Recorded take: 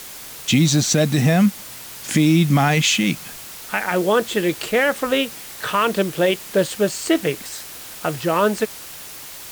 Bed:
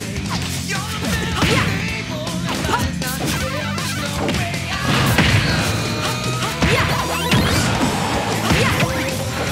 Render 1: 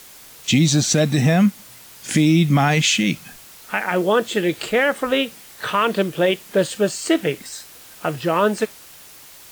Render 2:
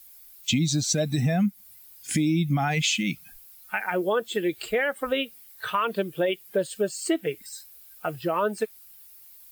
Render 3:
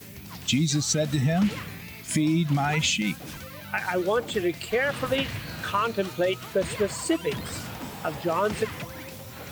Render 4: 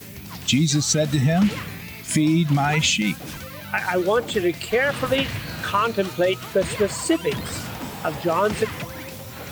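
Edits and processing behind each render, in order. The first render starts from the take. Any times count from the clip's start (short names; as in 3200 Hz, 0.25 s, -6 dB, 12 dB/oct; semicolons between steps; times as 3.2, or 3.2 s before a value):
noise print and reduce 7 dB
per-bin expansion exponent 1.5; compressor 2.5:1, threshold -23 dBFS, peak gain reduction 7.5 dB
add bed -19 dB
gain +4.5 dB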